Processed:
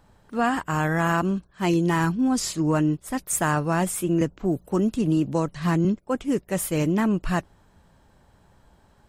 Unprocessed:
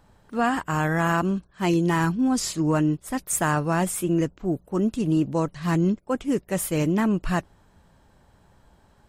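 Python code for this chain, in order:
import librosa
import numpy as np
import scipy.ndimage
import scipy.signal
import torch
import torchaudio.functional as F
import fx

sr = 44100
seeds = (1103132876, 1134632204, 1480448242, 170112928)

y = fx.band_squash(x, sr, depth_pct=70, at=(4.21, 5.85))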